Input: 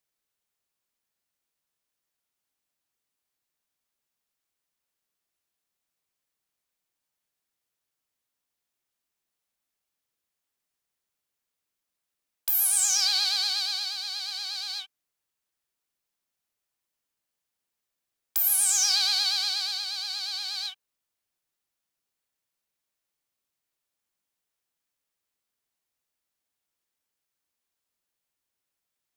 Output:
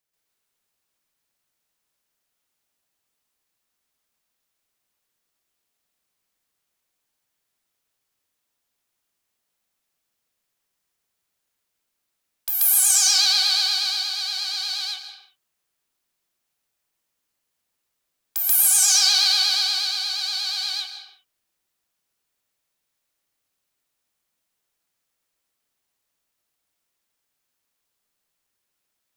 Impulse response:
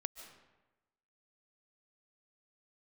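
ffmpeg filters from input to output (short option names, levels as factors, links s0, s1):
-filter_complex "[0:a]asplit=2[s0][s1];[1:a]atrim=start_sample=2205,afade=t=out:st=0.42:d=0.01,atrim=end_sample=18963,adelay=134[s2];[s1][s2]afir=irnorm=-1:irlink=0,volume=2.37[s3];[s0][s3]amix=inputs=2:normalize=0"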